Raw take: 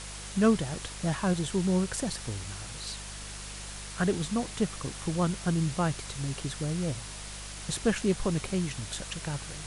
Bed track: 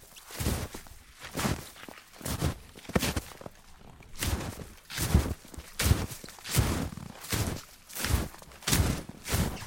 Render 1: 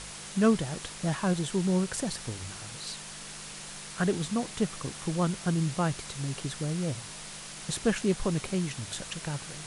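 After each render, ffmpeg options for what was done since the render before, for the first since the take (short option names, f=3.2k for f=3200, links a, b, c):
-af "bandreject=f=50:t=h:w=4,bandreject=f=100:t=h:w=4"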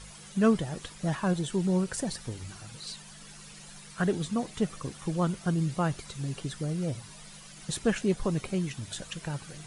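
-af "afftdn=nr=11:nf=-43"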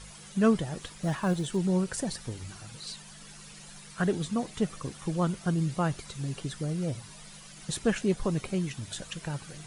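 -filter_complex "[0:a]asettb=1/sr,asplit=3[a][b][c];[a]atrim=end=0.804[d];[b]atrim=start=0.8:end=1.57,asetpts=PTS-STARTPTS,afade=t=in:d=0.004:c=qsin,afade=t=out:st=0.766:d=0.004:c=qsin,acrusher=bits=9:mode=log:mix=0:aa=0.000001[e];[c]atrim=start=1.566[f];[d][e]acrossfade=d=0.004:c1=hsin:c2=qsin[g];[g][f]acrossfade=d=0.004:c1=qsin:c2=hsin"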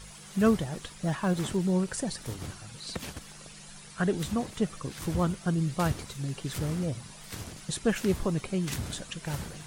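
-filter_complex "[1:a]volume=-10.5dB[a];[0:a][a]amix=inputs=2:normalize=0"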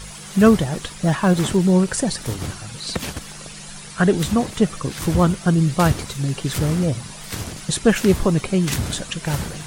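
-af "volume=11dB,alimiter=limit=-3dB:level=0:latency=1"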